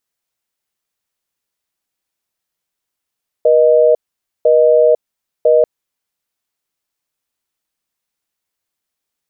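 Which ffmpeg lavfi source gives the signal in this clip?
ffmpeg -f lavfi -i "aevalsrc='0.335*(sin(2*PI*480*t)+sin(2*PI*620*t))*clip(min(mod(t,1),0.5-mod(t,1))/0.005,0,1)':duration=2.19:sample_rate=44100" out.wav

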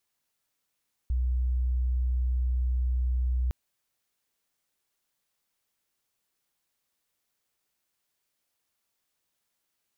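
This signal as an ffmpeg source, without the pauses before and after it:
ffmpeg -f lavfi -i "aevalsrc='0.0668*sin(2*PI*62.3*t)':duration=2.41:sample_rate=44100" out.wav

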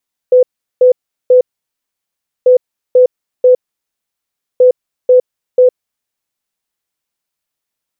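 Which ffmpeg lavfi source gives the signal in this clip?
ffmpeg -f lavfi -i "aevalsrc='0.708*sin(2*PI*503*t)*clip(min(mod(mod(t,2.14),0.49),0.11-mod(mod(t,2.14),0.49))/0.005,0,1)*lt(mod(t,2.14),1.47)':duration=6.42:sample_rate=44100" out.wav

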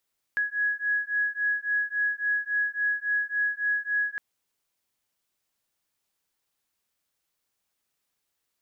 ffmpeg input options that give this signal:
ffmpeg -f lavfi -i "aevalsrc='0.0422*(sin(2*PI*1670*t)+sin(2*PI*1673.6*t))':duration=3.81:sample_rate=44100" out.wav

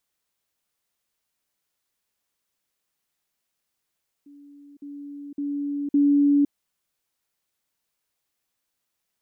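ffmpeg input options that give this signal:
ffmpeg -f lavfi -i "aevalsrc='pow(10,(-45+10*floor(t/0.56))/20)*sin(2*PI*286*t)*clip(min(mod(t,0.56),0.51-mod(t,0.56))/0.005,0,1)':duration=2.24:sample_rate=44100" out.wav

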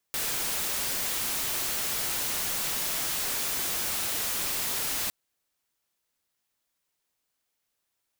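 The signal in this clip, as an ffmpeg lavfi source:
ffmpeg -f lavfi -i "anoisesrc=color=white:amplitude=0.0548:duration=4.96:sample_rate=44100:seed=1" out.wav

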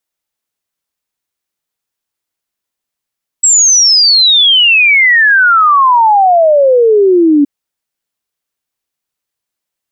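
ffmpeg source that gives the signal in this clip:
ffmpeg -f lavfi -i "aevalsrc='0.631*clip(min(t,4.02-t)/0.01,0,1)*sin(2*PI*7800*4.02/log(280/7800)*(exp(log(280/7800)*t/4.02)-1))':duration=4.02:sample_rate=44100" out.wav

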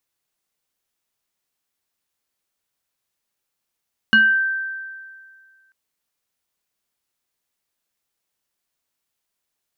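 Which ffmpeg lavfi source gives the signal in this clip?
ffmpeg -f lavfi -i "aevalsrc='0.376*pow(10,-3*t/1.95)*sin(2*PI*1560*t+0.86*pow(10,-3*t/0.4)*sin(2*PI*0.86*1560*t))':duration=1.59:sample_rate=44100" out.wav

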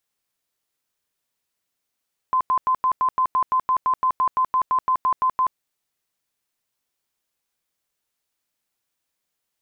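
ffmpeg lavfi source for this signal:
ffmpeg -f lavfi -i "aevalsrc='0.158*sin(2*PI*1030*mod(t,0.17))*lt(mod(t,0.17),80/1030)':duration=3.23:sample_rate=44100" out.wav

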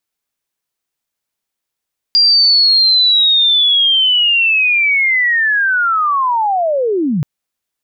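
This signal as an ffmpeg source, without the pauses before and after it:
ffmpeg -f lavfi -i "aevalsrc='pow(10,(-6.5-6*t/5.08)/20)*sin(2*PI*(4800*t-4670*t*t/(2*5.08)))':duration=5.08:sample_rate=44100" out.wav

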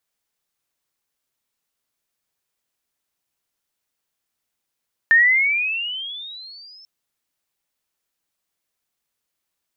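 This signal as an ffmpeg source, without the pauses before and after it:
ffmpeg -f lavfi -i "aevalsrc='pow(10,(-9-34*t/1.74)/20)*sin(2*PI*1790*1.74/(19*log(2)/12)*(exp(19*log(2)/12*t/1.74)-1))':duration=1.74:sample_rate=44100" out.wav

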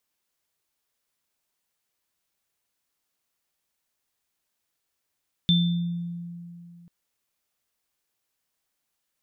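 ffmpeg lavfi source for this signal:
ffmpeg -f lavfi -i "aevalsrc='0.141*pow(10,-3*t/2.71)*sin(2*PI*172*t)+0.119*pow(10,-3*t/0.67)*sin(2*PI*3550*t)':duration=1.39:sample_rate=44100" out.wav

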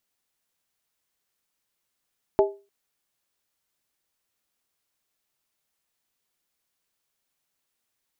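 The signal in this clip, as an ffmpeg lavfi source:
ffmpeg -f lavfi -i "aevalsrc='0.224*pow(10,-3*t/0.31)*sin(2*PI*399*t)+0.141*pow(10,-3*t/0.246)*sin(2*PI*636*t)+0.0891*pow(10,-3*t/0.212)*sin(2*PI*852.3*t)':duration=0.3:sample_rate=44100" out.wav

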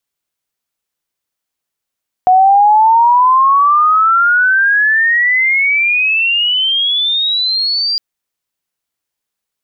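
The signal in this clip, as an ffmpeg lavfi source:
ffmpeg -f lavfi -i "aevalsrc='pow(10,(-4.5-8*t/5.71)/20)*sin(2*PI*730*5.71/log(4800/730)*(exp(log(4800/730)*t/5.71)-1))':duration=5.71:sample_rate=44100" out.wav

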